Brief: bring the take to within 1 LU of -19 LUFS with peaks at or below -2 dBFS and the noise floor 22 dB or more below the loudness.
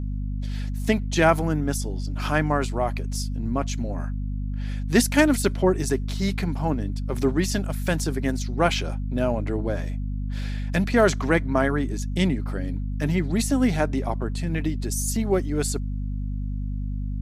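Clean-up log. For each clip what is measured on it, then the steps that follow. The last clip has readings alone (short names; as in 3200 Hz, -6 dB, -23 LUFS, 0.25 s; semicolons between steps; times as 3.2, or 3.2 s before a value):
hum 50 Hz; harmonics up to 250 Hz; hum level -25 dBFS; loudness -25.0 LUFS; peak -5.5 dBFS; loudness target -19.0 LUFS
-> notches 50/100/150/200/250 Hz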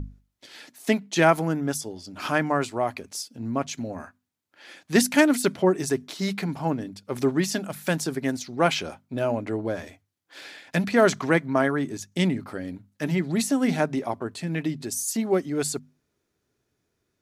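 hum none; loudness -25.5 LUFS; peak -5.5 dBFS; loudness target -19.0 LUFS
-> gain +6.5 dB; limiter -2 dBFS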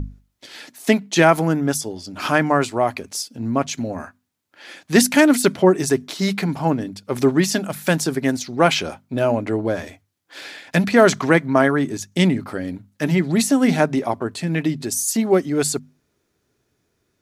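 loudness -19.5 LUFS; peak -2.0 dBFS; noise floor -70 dBFS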